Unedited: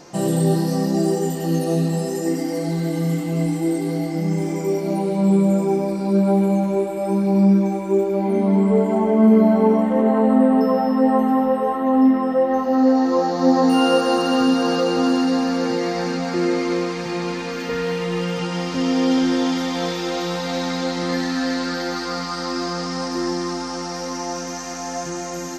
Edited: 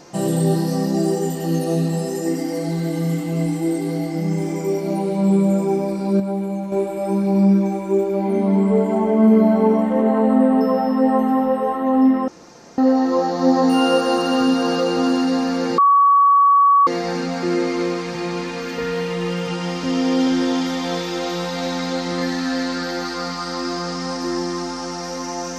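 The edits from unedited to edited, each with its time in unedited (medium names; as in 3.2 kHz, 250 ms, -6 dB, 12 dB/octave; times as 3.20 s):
6.20–6.72 s: gain -6.5 dB
12.28–12.78 s: room tone
15.78 s: add tone 1.13 kHz -9.5 dBFS 1.09 s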